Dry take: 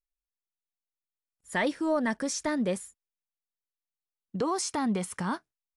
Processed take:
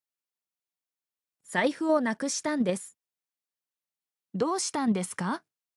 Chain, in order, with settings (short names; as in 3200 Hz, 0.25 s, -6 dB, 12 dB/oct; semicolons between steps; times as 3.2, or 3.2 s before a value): HPF 110 Hz 24 dB/oct; in parallel at +0.5 dB: level quantiser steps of 13 dB; on the sum: gain -2 dB